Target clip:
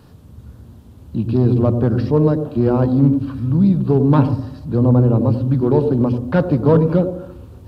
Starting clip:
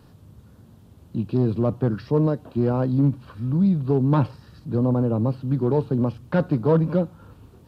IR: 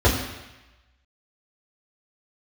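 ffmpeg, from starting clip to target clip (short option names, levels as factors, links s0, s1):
-filter_complex "[0:a]asplit=2[s0][s1];[1:a]atrim=start_sample=2205,lowpass=1100,adelay=86[s2];[s1][s2]afir=irnorm=-1:irlink=0,volume=0.0299[s3];[s0][s3]amix=inputs=2:normalize=0,volume=1.78"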